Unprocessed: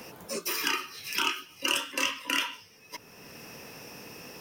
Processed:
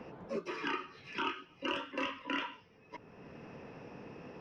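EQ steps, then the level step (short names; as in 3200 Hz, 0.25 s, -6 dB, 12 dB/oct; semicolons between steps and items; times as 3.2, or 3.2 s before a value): tape spacing loss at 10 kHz 45 dB; notches 50/100 Hz; +1.0 dB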